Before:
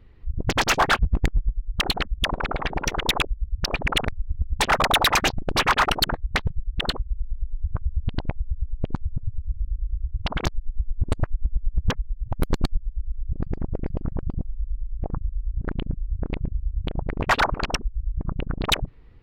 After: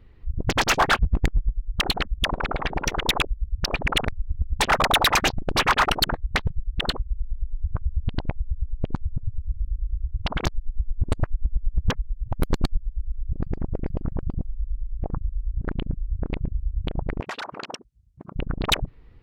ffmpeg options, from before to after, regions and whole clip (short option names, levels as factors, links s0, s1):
-filter_complex "[0:a]asettb=1/sr,asplit=3[s0][s1][s2];[s0]atrim=end=17.204[s3];[s1]atrim=start=17.2:end=18.35,asetpts=PTS-STARTPTS,afade=t=in:d=0.004:c=qsin,afade=t=out:st=1.146:d=0.004:c=qsin,aemphasis=mode=production:type=bsi,acompressor=threshold=0.0355:ratio=12:attack=3.2:release=140:knee=1:detection=peak,highpass=150,lowpass=6600[s4];[s2]atrim=start=18.346[s5];[s3][s4]acrossfade=d=0.004:c1=hsin:c2=qsin[s6];[s6][s5]acrossfade=d=0.004:c1=qsin:c2=hsin"